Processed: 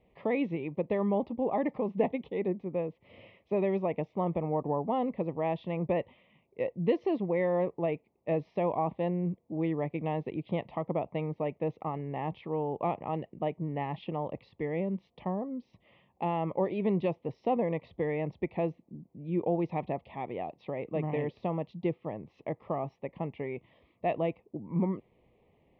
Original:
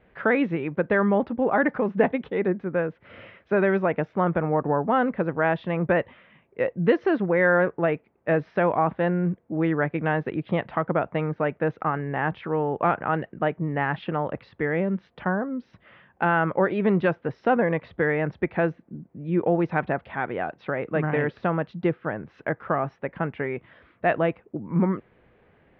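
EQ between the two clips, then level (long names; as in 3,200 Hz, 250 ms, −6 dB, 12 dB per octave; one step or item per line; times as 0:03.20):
Butterworth band-reject 1,500 Hz, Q 1.4
−7.0 dB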